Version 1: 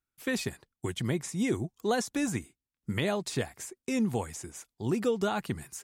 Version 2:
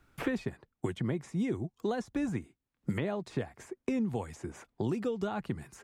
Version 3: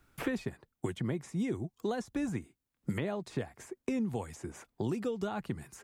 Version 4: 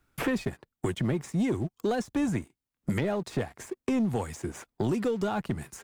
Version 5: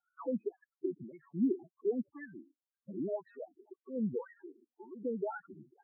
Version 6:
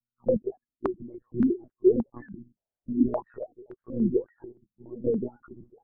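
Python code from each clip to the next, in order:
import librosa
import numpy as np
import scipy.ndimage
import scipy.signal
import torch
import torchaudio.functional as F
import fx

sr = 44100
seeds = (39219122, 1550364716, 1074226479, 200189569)

y1 = fx.lowpass(x, sr, hz=1400.0, slope=6)
y1 = fx.band_squash(y1, sr, depth_pct=100)
y1 = y1 * 10.0 ** (-3.0 / 20.0)
y2 = fx.high_shelf(y1, sr, hz=7000.0, db=7.5)
y2 = y2 * 10.0 ** (-1.5 / 20.0)
y3 = fx.leveller(y2, sr, passes=2)
y4 = fx.wah_lfo(y3, sr, hz=1.9, low_hz=270.0, high_hz=1700.0, q=2.4)
y4 = fx.spec_topn(y4, sr, count=4)
y5 = fx.lpc_monotone(y4, sr, seeds[0], pitch_hz=120.0, order=10)
y5 = fx.filter_held_lowpass(y5, sr, hz=3.5, low_hz=200.0, high_hz=1500.0)
y5 = y5 * 10.0 ** (5.5 / 20.0)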